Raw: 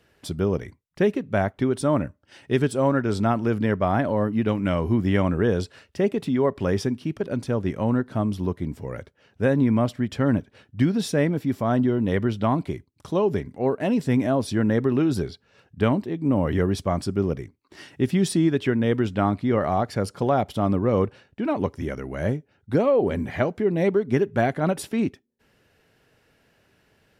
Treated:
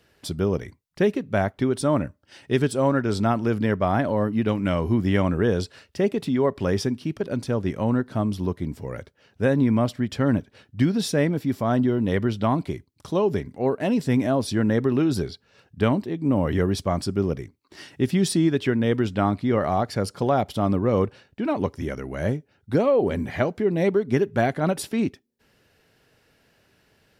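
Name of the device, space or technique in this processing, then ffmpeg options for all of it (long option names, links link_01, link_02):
presence and air boost: -af "equalizer=frequency=4600:width_type=o:width=0.77:gain=3.5,highshelf=frequency=9200:gain=4"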